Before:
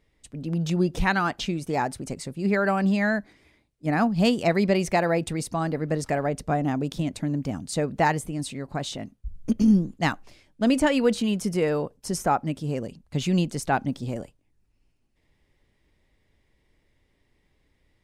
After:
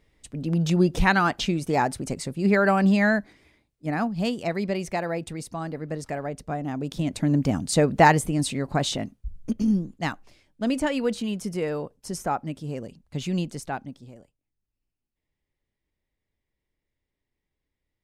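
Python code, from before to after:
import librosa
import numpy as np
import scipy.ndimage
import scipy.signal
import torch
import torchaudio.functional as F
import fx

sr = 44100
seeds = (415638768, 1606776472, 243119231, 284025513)

y = fx.gain(x, sr, db=fx.line((3.08, 3.0), (4.26, -5.5), (6.66, -5.5), (7.35, 6.0), (8.95, 6.0), (9.55, -4.0), (13.53, -4.0), (14.16, -16.0)))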